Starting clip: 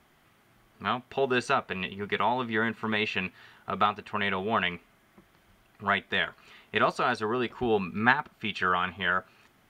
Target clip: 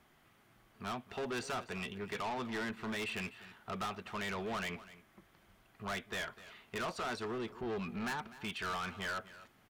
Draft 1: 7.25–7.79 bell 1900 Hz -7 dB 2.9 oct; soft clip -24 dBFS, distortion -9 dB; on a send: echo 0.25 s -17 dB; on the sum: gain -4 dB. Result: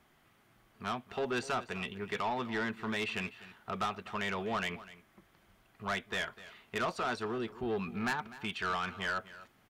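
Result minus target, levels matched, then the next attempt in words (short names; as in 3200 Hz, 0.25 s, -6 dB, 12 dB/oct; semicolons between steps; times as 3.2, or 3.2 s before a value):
soft clip: distortion -4 dB
7.25–7.79 bell 1900 Hz -7 dB 2.9 oct; soft clip -31 dBFS, distortion -5 dB; on a send: echo 0.25 s -17 dB; on the sum: gain -4 dB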